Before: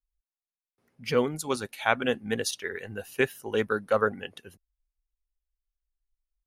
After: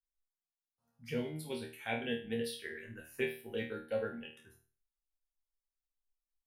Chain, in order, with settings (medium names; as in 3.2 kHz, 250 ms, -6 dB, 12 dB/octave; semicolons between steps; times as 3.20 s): touch-sensitive phaser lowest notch 360 Hz, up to 1.2 kHz, full sweep at -29 dBFS; chord resonator D#2 fifth, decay 0.39 s; trim +4 dB